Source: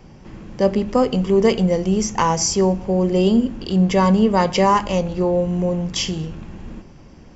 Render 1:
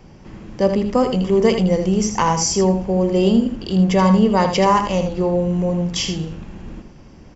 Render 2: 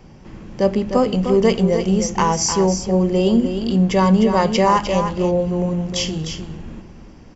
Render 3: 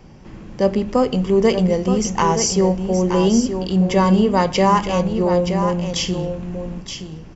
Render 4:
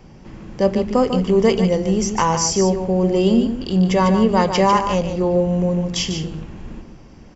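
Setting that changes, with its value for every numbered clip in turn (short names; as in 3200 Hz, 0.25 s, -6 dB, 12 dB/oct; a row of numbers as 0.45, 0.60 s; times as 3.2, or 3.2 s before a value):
echo, time: 80, 304, 923, 147 ms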